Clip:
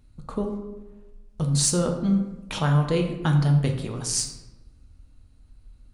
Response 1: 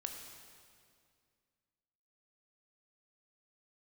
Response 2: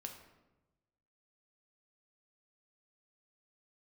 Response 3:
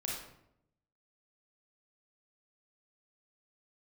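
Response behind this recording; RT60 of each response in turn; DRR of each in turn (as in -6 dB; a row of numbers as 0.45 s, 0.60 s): 2; 2.2 s, 1.1 s, 0.75 s; 3.0 dB, 2.5 dB, -3.5 dB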